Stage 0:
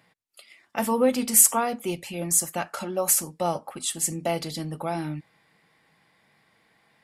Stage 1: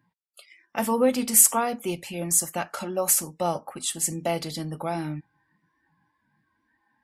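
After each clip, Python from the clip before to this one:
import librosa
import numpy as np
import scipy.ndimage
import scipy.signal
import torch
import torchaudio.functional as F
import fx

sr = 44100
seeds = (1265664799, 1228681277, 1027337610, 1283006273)

y = fx.noise_reduce_blind(x, sr, reduce_db=19)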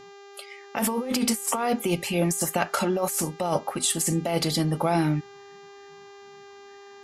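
y = fx.over_compress(x, sr, threshold_db=-29.0, ratio=-1.0)
y = fx.dmg_buzz(y, sr, base_hz=400.0, harmonics=18, level_db=-51.0, tilt_db=-6, odd_only=False)
y = y * 10.0 ** (4.0 / 20.0)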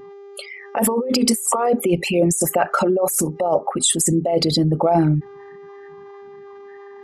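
y = fx.envelope_sharpen(x, sr, power=2.0)
y = y * 10.0 ** (7.0 / 20.0)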